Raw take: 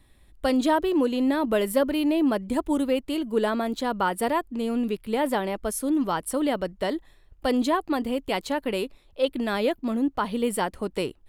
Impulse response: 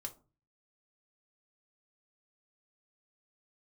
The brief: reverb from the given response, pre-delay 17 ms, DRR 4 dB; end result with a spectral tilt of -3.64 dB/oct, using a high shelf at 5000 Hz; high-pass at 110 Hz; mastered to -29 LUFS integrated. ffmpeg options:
-filter_complex "[0:a]highpass=110,highshelf=f=5k:g=7,asplit=2[a][b];[1:a]atrim=start_sample=2205,adelay=17[c];[b][c]afir=irnorm=-1:irlink=0,volume=-1dB[d];[a][d]amix=inputs=2:normalize=0,volume=-5dB"

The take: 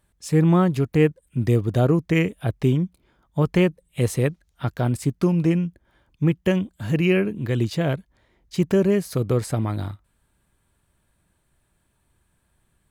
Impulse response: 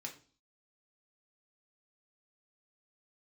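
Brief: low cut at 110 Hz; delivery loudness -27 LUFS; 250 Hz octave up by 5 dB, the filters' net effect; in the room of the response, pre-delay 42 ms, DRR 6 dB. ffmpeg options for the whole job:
-filter_complex "[0:a]highpass=110,equalizer=f=250:t=o:g=8.5,asplit=2[a][b];[1:a]atrim=start_sample=2205,adelay=42[c];[b][c]afir=irnorm=-1:irlink=0,volume=-3.5dB[d];[a][d]amix=inputs=2:normalize=0,volume=-9dB"

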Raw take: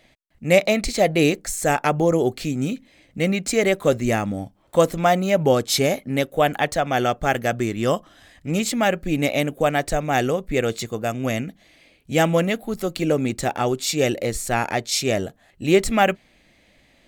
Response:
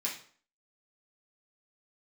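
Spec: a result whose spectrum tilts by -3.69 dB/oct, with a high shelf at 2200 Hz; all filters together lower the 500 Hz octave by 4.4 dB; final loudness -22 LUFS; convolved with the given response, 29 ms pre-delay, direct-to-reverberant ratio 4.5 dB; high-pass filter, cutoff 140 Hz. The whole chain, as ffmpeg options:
-filter_complex "[0:a]highpass=140,equalizer=f=500:t=o:g=-6,highshelf=f=2.2k:g=7.5,asplit=2[a][b];[1:a]atrim=start_sample=2205,adelay=29[c];[b][c]afir=irnorm=-1:irlink=0,volume=-8dB[d];[a][d]amix=inputs=2:normalize=0,volume=-2dB"

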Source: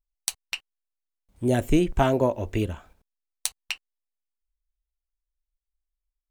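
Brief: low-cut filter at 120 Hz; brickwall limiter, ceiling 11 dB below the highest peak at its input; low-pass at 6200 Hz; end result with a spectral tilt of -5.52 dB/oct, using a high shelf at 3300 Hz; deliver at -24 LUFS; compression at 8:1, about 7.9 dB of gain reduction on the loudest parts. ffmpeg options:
-af "highpass=120,lowpass=6.2k,highshelf=f=3.3k:g=5.5,acompressor=threshold=-24dB:ratio=8,volume=9dB,alimiter=limit=-8dB:level=0:latency=1"

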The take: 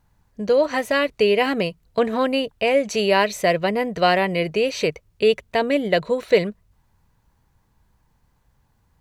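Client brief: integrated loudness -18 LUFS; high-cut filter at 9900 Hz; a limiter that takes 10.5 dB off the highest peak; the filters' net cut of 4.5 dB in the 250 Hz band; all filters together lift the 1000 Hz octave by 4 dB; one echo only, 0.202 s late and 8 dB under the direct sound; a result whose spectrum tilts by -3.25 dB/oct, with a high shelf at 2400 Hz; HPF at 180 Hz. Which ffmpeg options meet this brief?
-af "highpass=180,lowpass=9.9k,equalizer=f=250:t=o:g=-4.5,equalizer=f=1k:t=o:g=5.5,highshelf=f=2.4k:g=3,alimiter=limit=-11.5dB:level=0:latency=1,aecho=1:1:202:0.398,volume=4.5dB"

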